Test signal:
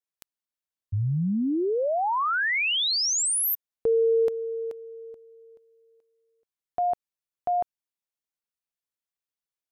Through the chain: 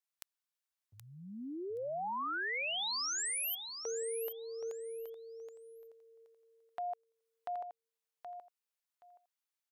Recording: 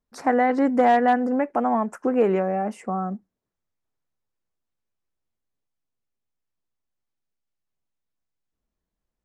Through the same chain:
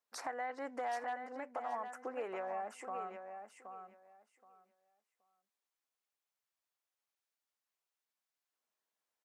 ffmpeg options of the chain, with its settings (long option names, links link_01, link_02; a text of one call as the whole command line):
ffmpeg -i in.wav -af "highpass=700,acompressor=threshold=-40dB:ratio=3:attack=1.4:release=724:knee=1:detection=peak,aecho=1:1:774|1548|2322:0.398|0.0717|0.0129" out.wav